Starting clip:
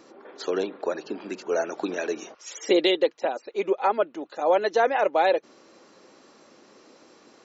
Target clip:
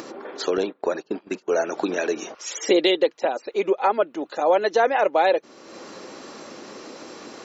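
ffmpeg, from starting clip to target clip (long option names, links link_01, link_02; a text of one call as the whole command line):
ffmpeg -i in.wav -filter_complex "[0:a]asplit=2[link_01][link_02];[link_02]acompressor=threshold=-30dB:ratio=10,volume=2dB[link_03];[link_01][link_03]amix=inputs=2:normalize=0,asettb=1/sr,asplit=3[link_04][link_05][link_06];[link_04]atrim=end=0.574[link_07];[link_05]atrim=start=0.57:end=1.48,asetpts=PTS-STARTPTS,afade=type=in:duration=0.004:curve=qsin,afade=type=out:start_time=0.906:duration=0.004:curve=qsin,agate=range=-25dB:threshold=-27dB:ratio=16:detection=peak[link_08];[link_06]atrim=start=1.476[link_09];[link_07][link_08]acrossfade=duration=0.004:curve1=hsin:curve2=qsin[link_10];[link_10][link_09]acrossfade=duration=0.004:curve1=qsin:curve2=hsin,acompressor=mode=upward:threshold=-31dB:ratio=2.5" out.wav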